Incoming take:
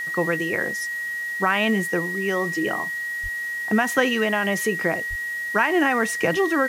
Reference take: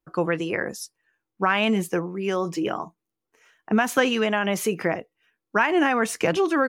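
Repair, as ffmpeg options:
ffmpeg -i in.wav -filter_complex "[0:a]adeclick=threshold=4,bandreject=frequency=1900:width=30,asplit=3[link_01][link_02][link_03];[link_01]afade=type=out:start_time=3.22:duration=0.02[link_04];[link_02]highpass=frequency=140:width=0.5412,highpass=frequency=140:width=1.3066,afade=type=in:start_time=3.22:duration=0.02,afade=type=out:start_time=3.34:duration=0.02[link_05];[link_03]afade=type=in:start_time=3.34:duration=0.02[link_06];[link_04][link_05][link_06]amix=inputs=3:normalize=0,asplit=3[link_07][link_08][link_09];[link_07]afade=type=out:start_time=5.09:duration=0.02[link_10];[link_08]highpass=frequency=140:width=0.5412,highpass=frequency=140:width=1.3066,afade=type=in:start_time=5.09:duration=0.02,afade=type=out:start_time=5.21:duration=0.02[link_11];[link_09]afade=type=in:start_time=5.21:duration=0.02[link_12];[link_10][link_11][link_12]amix=inputs=3:normalize=0,afwtdn=0.0056" out.wav

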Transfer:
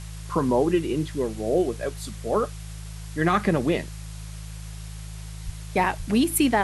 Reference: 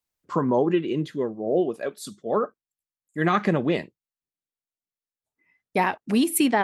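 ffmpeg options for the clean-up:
ffmpeg -i in.wav -filter_complex "[0:a]bandreject=frequency=53.3:width_type=h:width=4,bandreject=frequency=106.6:width_type=h:width=4,bandreject=frequency=159.9:width_type=h:width=4,asplit=3[link_01][link_02][link_03];[link_01]afade=type=out:start_time=5.45:duration=0.02[link_04];[link_02]highpass=frequency=140:width=0.5412,highpass=frequency=140:width=1.3066,afade=type=in:start_time=5.45:duration=0.02,afade=type=out:start_time=5.57:duration=0.02[link_05];[link_03]afade=type=in:start_time=5.57:duration=0.02[link_06];[link_04][link_05][link_06]amix=inputs=3:normalize=0,asplit=3[link_07][link_08][link_09];[link_07]afade=type=out:start_time=5.98:duration=0.02[link_10];[link_08]highpass=frequency=140:width=0.5412,highpass=frequency=140:width=1.3066,afade=type=in:start_time=5.98:duration=0.02,afade=type=out:start_time=6.1:duration=0.02[link_11];[link_09]afade=type=in:start_time=6.1:duration=0.02[link_12];[link_10][link_11][link_12]amix=inputs=3:normalize=0,afftdn=noise_reduction=30:noise_floor=-37" out.wav

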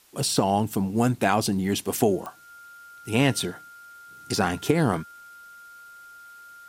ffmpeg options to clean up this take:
ffmpeg -i in.wav -af "adeclick=threshold=4,bandreject=frequency=1400:width=30,agate=range=-21dB:threshold=-39dB" out.wav

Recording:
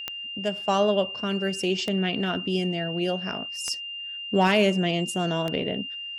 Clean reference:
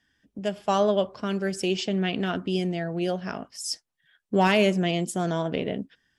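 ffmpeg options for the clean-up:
ffmpeg -i in.wav -af "adeclick=threshold=4,bandreject=frequency=2800:width=30" out.wav

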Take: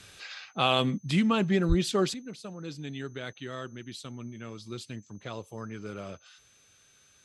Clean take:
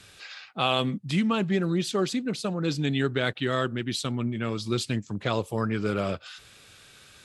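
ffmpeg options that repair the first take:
ffmpeg -i in.wav -filter_complex "[0:a]bandreject=frequency=6200:width=30,asplit=3[link_01][link_02][link_03];[link_01]afade=type=out:start_time=1.68:duration=0.02[link_04];[link_02]highpass=frequency=140:width=0.5412,highpass=frequency=140:width=1.3066,afade=type=in:start_time=1.68:duration=0.02,afade=type=out:start_time=1.8:duration=0.02[link_05];[link_03]afade=type=in:start_time=1.8:duration=0.02[link_06];[link_04][link_05][link_06]amix=inputs=3:normalize=0,asetnsamples=nb_out_samples=441:pad=0,asendcmd='2.14 volume volume 12dB',volume=0dB" out.wav

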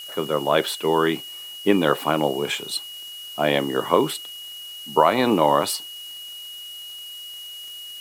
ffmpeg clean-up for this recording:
ffmpeg -i in.wav -af "adeclick=threshold=4,bandreject=frequency=2900:width=30,afftdn=noise_reduction=30:noise_floor=-37" out.wav

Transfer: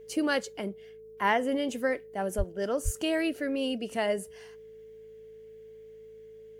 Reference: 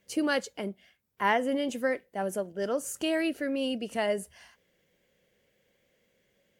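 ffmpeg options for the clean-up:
ffmpeg -i in.wav -filter_complex "[0:a]bandreject=frequency=53.9:width_type=h:width=4,bandreject=frequency=107.8:width_type=h:width=4,bandreject=frequency=161.7:width_type=h:width=4,bandreject=frequency=215.6:width_type=h:width=4,bandreject=frequency=440:width=30,asplit=3[link_01][link_02][link_03];[link_01]afade=type=out:start_time=2.37:duration=0.02[link_04];[link_02]highpass=frequency=140:width=0.5412,highpass=frequency=140:width=1.3066,afade=type=in:start_time=2.37:duration=0.02,afade=type=out:start_time=2.49:duration=0.02[link_05];[link_03]afade=type=in:start_time=2.49:duration=0.02[link_06];[link_04][link_05][link_06]amix=inputs=3:normalize=0,asplit=3[link_07][link_08][link_09];[link_07]afade=type=out:start_time=2.84:duration=0.02[link_10];[link_08]highpass=frequency=140:width=0.5412,highpass=frequency=140:width=1.3066,afade=type=in:start_time=2.84:duration=0.02,afade=type=out:start_time=2.96:duration=0.02[link_11];[link_09]afade=type=in:start_time=2.96:duration=0.02[link_12];[link_10][link_11][link_12]amix=inputs=3:normalize=0" out.wav

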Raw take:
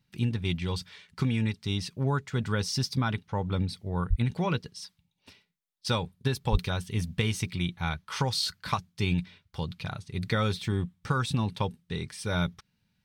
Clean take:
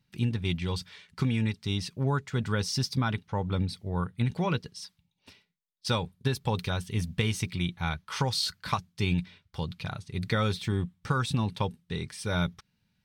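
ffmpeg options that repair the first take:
ffmpeg -i in.wav -filter_complex "[0:a]asplit=3[link_01][link_02][link_03];[link_01]afade=type=out:start_time=4.09:duration=0.02[link_04];[link_02]highpass=frequency=140:width=0.5412,highpass=frequency=140:width=1.3066,afade=type=in:start_time=4.09:duration=0.02,afade=type=out:start_time=4.21:duration=0.02[link_05];[link_03]afade=type=in:start_time=4.21:duration=0.02[link_06];[link_04][link_05][link_06]amix=inputs=3:normalize=0,asplit=3[link_07][link_08][link_09];[link_07]afade=type=out:start_time=6.51:duration=0.02[link_10];[link_08]highpass=frequency=140:width=0.5412,highpass=frequency=140:width=1.3066,afade=type=in:start_time=6.51:duration=0.02,afade=type=out:start_time=6.63:duration=0.02[link_11];[link_09]afade=type=in:start_time=6.63:duration=0.02[link_12];[link_10][link_11][link_12]amix=inputs=3:normalize=0" out.wav

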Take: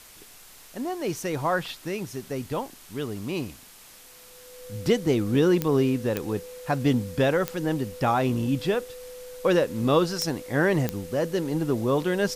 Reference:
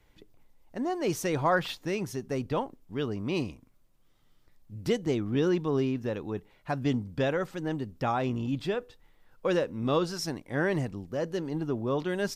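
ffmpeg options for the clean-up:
ffmpeg -i in.wav -af "adeclick=threshold=4,bandreject=frequency=500:width=30,afwtdn=0.004,asetnsamples=nb_out_samples=441:pad=0,asendcmd='4.6 volume volume -5.5dB',volume=0dB" out.wav

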